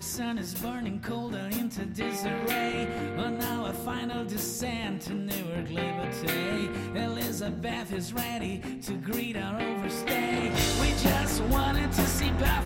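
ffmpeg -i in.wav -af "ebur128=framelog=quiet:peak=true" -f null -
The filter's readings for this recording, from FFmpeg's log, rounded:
Integrated loudness:
  I:         -30.3 LUFS
  Threshold: -40.2 LUFS
Loudness range:
  LRA:         4.7 LU
  Threshold: -50.8 LUFS
  LRA low:   -32.2 LUFS
  LRA high:  -27.5 LUFS
True peak:
  Peak:      -10.5 dBFS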